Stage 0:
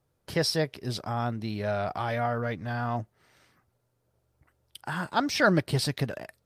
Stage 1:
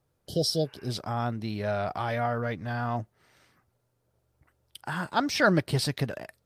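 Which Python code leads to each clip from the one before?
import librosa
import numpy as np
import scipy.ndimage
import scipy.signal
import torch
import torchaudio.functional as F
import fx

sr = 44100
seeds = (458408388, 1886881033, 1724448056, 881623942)

y = fx.spec_repair(x, sr, seeds[0], start_s=0.3, length_s=0.57, low_hz=780.0, high_hz=2900.0, source='both')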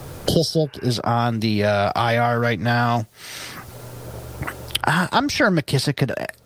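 y = fx.band_squash(x, sr, depth_pct=100)
y = F.gain(torch.from_numpy(y), 9.0).numpy()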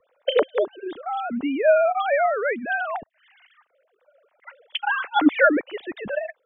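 y = fx.sine_speech(x, sr)
y = fx.band_widen(y, sr, depth_pct=70)
y = F.gain(torch.from_numpy(y), -3.5).numpy()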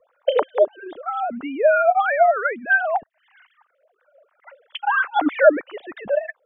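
y = fx.bell_lfo(x, sr, hz=3.1, low_hz=580.0, high_hz=1600.0, db=15)
y = F.gain(torch.from_numpy(y), -5.0).numpy()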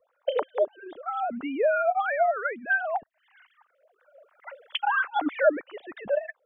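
y = fx.recorder_agc(x, sr, target_db=-9.0, rise_db_per_s=6.3, max_gain_db=30)
y = F.gain(torch.from_numpy(y), -8.0).numpy()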